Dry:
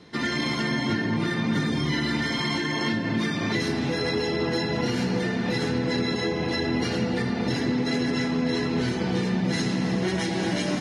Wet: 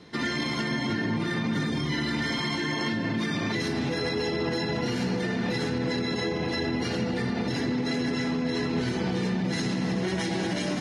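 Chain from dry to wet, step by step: limiter -19.5 dBFS, peak gain reduction 5 dB

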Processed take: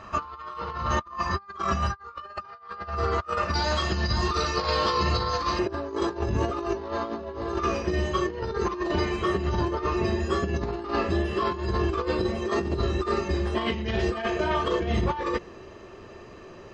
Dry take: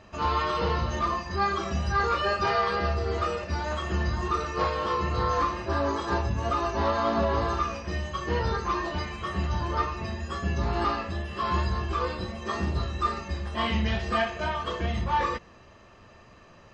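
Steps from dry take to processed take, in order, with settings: bell 1200 Hz +13 dB 0.61 oct, from 3.54 s 4600 Hz, from 5.59 s 380 Hz; negative-ratio compressor -27 dBFS, ratio -0.5

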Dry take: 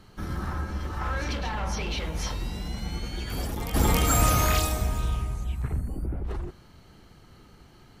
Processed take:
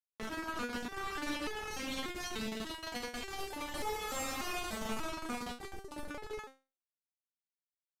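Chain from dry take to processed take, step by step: bell 640 Hz -10.5 dB 1.9 oct, from 2.73 s 180 Hz; compressor 4:1, threshold -30 dBFS, peak gain reduction 9.5 dB; bit-crush 5-bit; overdrive pedal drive 36 dB, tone 2800 Hz, clips at -21 dBFS; downsampling 32000 Hz; stepped resonator 3.4 Hz 220–430 Hz; gain +6.5 dB

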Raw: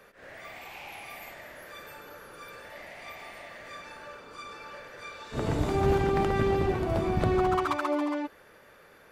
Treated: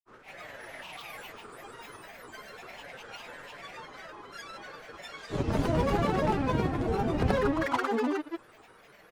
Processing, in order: comb 6.2 ms, depth 47%; grains, pitch spread up and down by 7 st

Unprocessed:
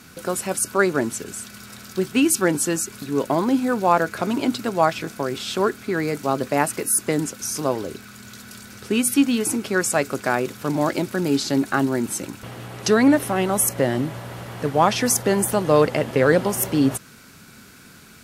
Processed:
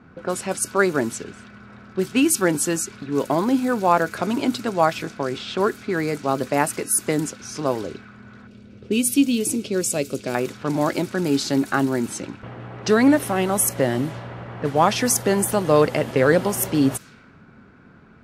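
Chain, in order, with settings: low-pass opened by the level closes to 1100 Hz, open at -18.5 dBFS; 8.47–10.35 band shelf 1200 Hz -13.5 dB

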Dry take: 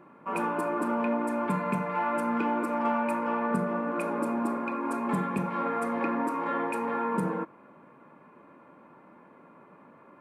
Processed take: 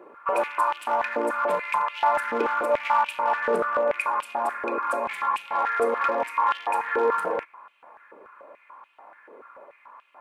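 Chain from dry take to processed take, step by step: hard clip -23 dBFS, distortion -20 dB; stepped high-pass 6.9 Hz 440–2900 Hz; gain +2.5 dB

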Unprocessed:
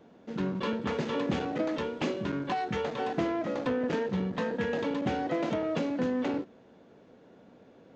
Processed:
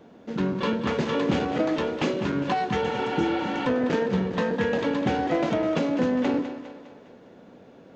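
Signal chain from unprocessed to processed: split-band echo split 460 Hz, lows 0.119 s, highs 0.203 s, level -10.5 dB; spectral repair 2.85–3.64, 490–5100 Hz before; gain +5.5 dB

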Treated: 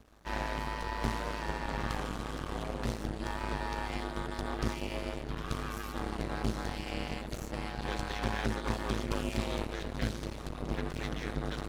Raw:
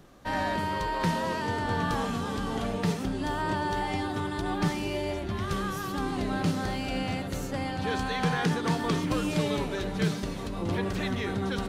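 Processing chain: half-wave rectifier; ring modulator 53 Hz

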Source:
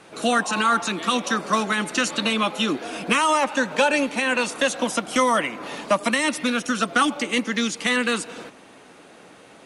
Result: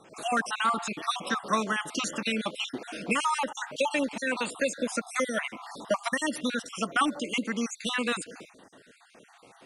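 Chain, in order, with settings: random spectral dropouts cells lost 43%; gain -5 dB

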